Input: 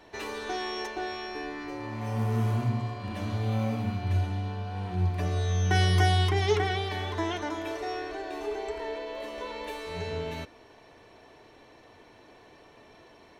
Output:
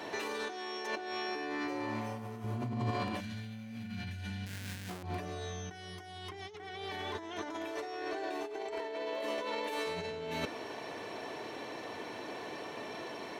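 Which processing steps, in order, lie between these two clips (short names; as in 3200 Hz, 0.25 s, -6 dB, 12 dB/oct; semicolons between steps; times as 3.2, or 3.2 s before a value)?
4.46–5.03 half-waves squared off; HPF 170 Hz 12 dB/oct; negative-ratio compressor -43 dBFS, ratio -1; 2.44–2.91 low shelf 450 Hz +8 dB; 3.2–4.89 spectral gain 260–1400 Hz -14 dB; gain +3 dB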